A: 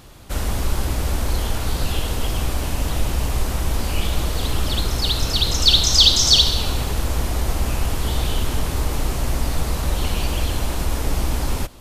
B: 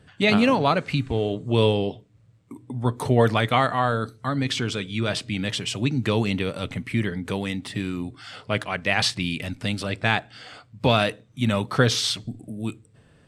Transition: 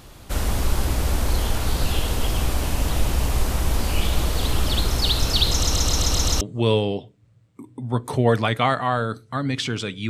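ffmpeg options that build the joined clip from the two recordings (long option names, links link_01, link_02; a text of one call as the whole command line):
ffmpeg -i cue0.wav -i cue1.wav -filter_complex "[0:a]apad=whole_dur=10.09,atrim=end=10.09,asplit=7[link_01][link_02][link_03][link_04][link_05][link_06][link_07];[link_01]atrim=end=5.632[link_08];[link_02]atrim=start=5.498:end=5.632[link_09];[link_03]atrim=start=5.498:end=5.632[link_10];[link_04]atrim=start=5.498:end=5.632[link_11];[link_05]atrim=start=5.498:end=5.632[link_12];[link_06]atrim=start=5.498:end=5.632[link_13];[link_07]atrim=start=5.498:end=5.632[link_14];[1:a]atrim=start=1.328:end=5.01[link_15];[link_08][link_09]acrossfade=duration=0.004:curve1=hsin:curve2=hsin[link_16];[link_16][link_10]acrossfade=duration=0.004:curve1=hsin:curve2=hsin[link_17];[link_17][link_11]acrossfade=duration=0.004:curve1=hsin:curve2=hsin[link_18];[link_18][link_12]acrossfade=duration=0.004:curve1=hsin:curve2=hsin[link_19];[link_19][link_13]acrossfade=duration=0.004:curve1=hsin:curve2=hsin[link_20];[link_20][link_14]acrossfade=duration=0.004:curve1=hsin:curve2=hsin[link_21];[link_21][link_15]acrossfade=duration=0.004:curve1=hsin:curve2=hsin" out.wav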